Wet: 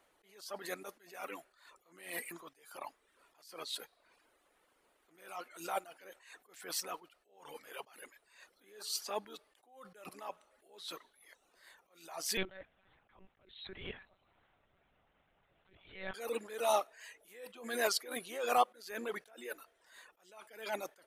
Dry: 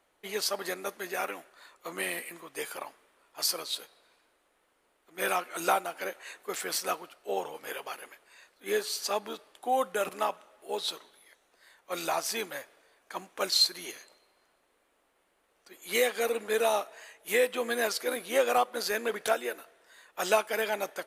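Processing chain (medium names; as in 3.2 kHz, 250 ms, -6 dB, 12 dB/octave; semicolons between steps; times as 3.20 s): reverb removal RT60 0.57 s; 12.37–16.14 s: monotone LPC vocoder at 8 kHz 190 Hz; attacks held to a fixed rise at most 100 dB/s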